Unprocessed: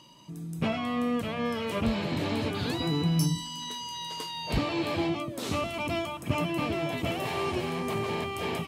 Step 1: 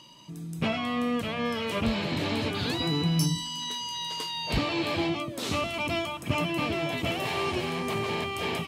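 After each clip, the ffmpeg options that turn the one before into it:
-af "equalizer=f=3500:t=o:w=2.3:g=4.5"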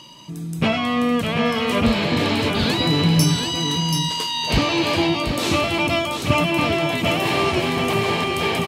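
-af "aecho=1:1:733:0.501,volume=2.66"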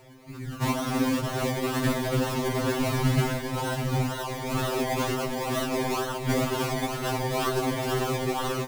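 -af "acrusher=samples=26:mix=1:aa=0.000001:lfo=1:lforange=15.6:lforate=2.1,afftfilt=real='hypot(re,im)*cos(2*PI*random(0))':imag='hypot(re,im)*sin(2*PI*random(1))':win_size=512:overlap=0.75,afftfilt=real='re*2.45*eq(mod(b,6),0)':imag='im*2.45*eq(mod(b,6),0)':win_size=2048:overlap=0.75,volume=1.19"

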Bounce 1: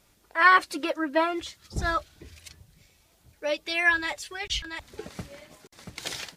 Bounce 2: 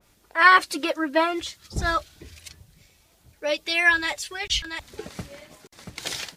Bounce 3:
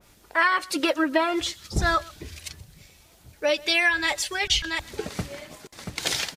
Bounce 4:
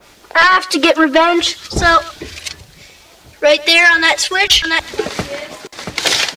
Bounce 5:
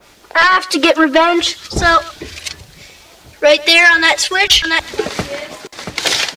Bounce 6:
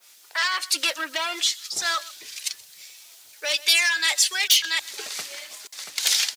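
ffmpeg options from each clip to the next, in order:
-af "adynamicequalizer=threshold=0.0178:dfrequency=2400:dqfactor=0.7:tfrequency=2400:tqfactor=0.7:attack=5:release=100:ratio=0.375:range=2:mode=boostabove:tftype=highshelf,volume=1.33"
-af "acompressor=threshold=0.0708:ratio=8,aecho=1:1:127:0.075,volume=1.78"
-filter_complex "[0:a]acrossover=split=280|6800[s0][s1][s2];[s1]aeval=exprs='0.398*sin(PI/2*2*val(0)/0.398)':c=same[s3];[s0][s3][s2]amix=inputs=3:normalize=0,acrusher=bits=10:mix=0:aa=0.000001,volume=1.68"
-af "dynaudnorm=f=110:g=13:m=3.76,volume=0.891"
-af "apsyclip=2,aderivative,volume=0.473"

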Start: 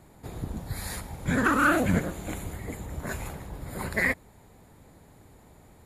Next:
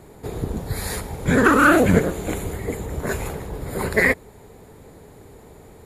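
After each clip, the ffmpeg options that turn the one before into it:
-af "equalizer=f=430:t=o:w=0.46:g=9.5,volume=2.24"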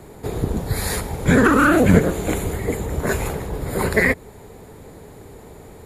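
-filter_complex "[0:a]acrossover=split=270[s0][s1];[s1]acompressor=threshold=0.112:ratio=3[s2];[s0][s2]amix=inputs=2:normalize=0,volume=1.58"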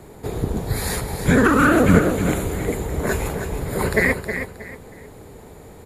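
-af "aecho=1:1:316|632|948:0.376|0.105|0.0295,volume=0.891"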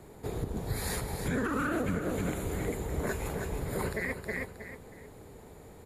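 -af "alimiter=limit=0.211:level=0:latency=1:release=230,volume=0.376"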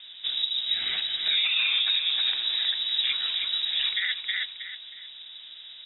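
-af "lowpass=f=3300:t=q:w=0.5098,lowpass=f=3300:t=q:w=0.6013,lowpass=f=3300:t=q:w=0.9,lowpass=f=3300:t=q:w=2.563,afreqshift=-3900,volume=2"

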